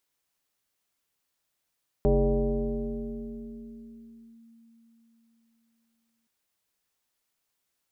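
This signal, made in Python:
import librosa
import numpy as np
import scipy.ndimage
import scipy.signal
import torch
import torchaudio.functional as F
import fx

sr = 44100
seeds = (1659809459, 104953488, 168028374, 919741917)

y = fx.fm2(sr, length_s=4.22, level_db=-17.5, carrier_hz=229.0, ratio=0.8, index=1.9, index_s=2.36, decay_s=4.27, shape='linear')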